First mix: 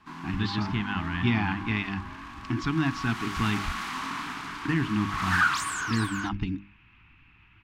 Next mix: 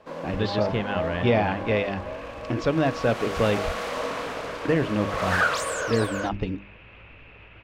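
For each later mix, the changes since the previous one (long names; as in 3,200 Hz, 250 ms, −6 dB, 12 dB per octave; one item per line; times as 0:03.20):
second sound +8.5 dB
master: remove Chebyshev band-stop filter 290–1,000 Hz, order 2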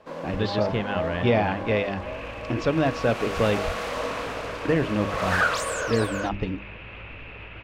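second sound +7.5 dB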